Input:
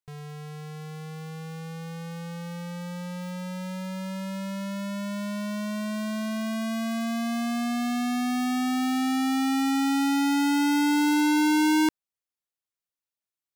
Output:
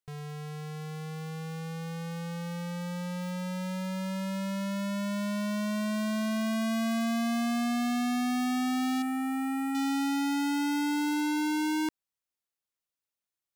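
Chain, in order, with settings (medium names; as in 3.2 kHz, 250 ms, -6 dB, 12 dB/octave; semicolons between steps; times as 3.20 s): 9.02–9.75 s: high-order bell 4.5 kHz -14.5 dB 1.3 oct; peak limiter -28.5 dBFS, peak gain reduction 8 dB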